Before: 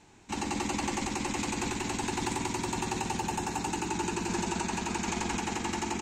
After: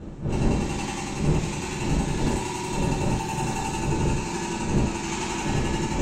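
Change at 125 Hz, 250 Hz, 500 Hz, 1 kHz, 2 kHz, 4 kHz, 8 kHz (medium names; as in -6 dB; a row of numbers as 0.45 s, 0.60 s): +13.0 dB, +6.5 dB, +6.5 dB, +2.5 dB, +2.5 dB, +2.5 dB, +1.5 dB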